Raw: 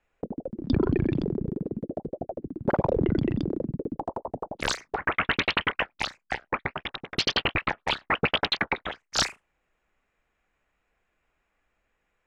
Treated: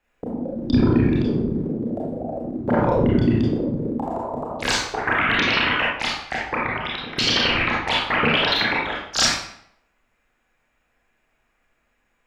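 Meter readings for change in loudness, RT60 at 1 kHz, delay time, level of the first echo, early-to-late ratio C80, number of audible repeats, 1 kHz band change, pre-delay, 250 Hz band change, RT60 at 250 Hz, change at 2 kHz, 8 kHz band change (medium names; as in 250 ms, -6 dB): +7.0 dB, 0.65 s, no echo, no echo, 4.5 dB, no echo, +6.5 dB, 26 ms, +8.0 dB, 0.70 s, +7.5 dB, +8.0 dB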